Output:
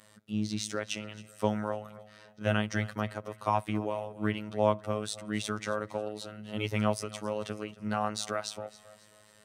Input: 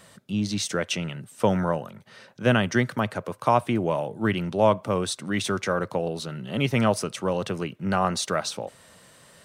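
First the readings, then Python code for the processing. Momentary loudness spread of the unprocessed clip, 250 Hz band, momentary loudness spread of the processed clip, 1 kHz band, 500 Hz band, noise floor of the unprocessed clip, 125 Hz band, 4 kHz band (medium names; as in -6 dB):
9 LU, -7.5 dB, 10 LU, -7.0 dB, -7.5 dB, -54 dBFS, -7.5 dB, -7.5 dB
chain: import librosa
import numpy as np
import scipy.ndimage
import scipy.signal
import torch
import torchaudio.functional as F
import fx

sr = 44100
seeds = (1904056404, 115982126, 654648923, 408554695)

y = fx.robotise(x, sr, hz=106.0)
y = fx.echo_feedback(y, sr, ms=272, feedback_pct=40, wet_db=-18.5)
y = F.gain(torch.from_numpy(y), -5.5).numpy()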